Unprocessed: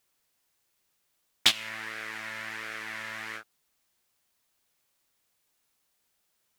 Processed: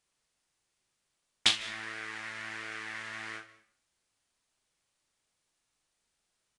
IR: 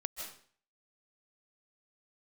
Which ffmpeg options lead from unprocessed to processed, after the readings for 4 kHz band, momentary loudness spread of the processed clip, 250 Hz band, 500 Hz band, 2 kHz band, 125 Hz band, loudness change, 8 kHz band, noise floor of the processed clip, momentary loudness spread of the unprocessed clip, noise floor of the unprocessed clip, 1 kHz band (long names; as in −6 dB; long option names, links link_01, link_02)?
−2.5 dB, 13 LU, −1.5 dB, −3.0 dB, −2.5 dB, −0.5 dB, −2.5 dB, −3.0 dB, −81 dBFS, 13 LU, −75 dBFS, −2.5 dB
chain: -filter_complex "[0:a]aecho=1:1:39|63:0.335|0.178,asplit=2[link_01][link_02];[1:a]atrim=start_sample=2205,lowshelf=frequency=240:gain=12[link_03];[link_02][link_03]afir=irnorm=-1:irlink=0,volume=-11.5dB[link_04];[link_01][link_04]amix=inputs=2:normalize=0,aresample=22050,aresample=44100,volume=-5dB"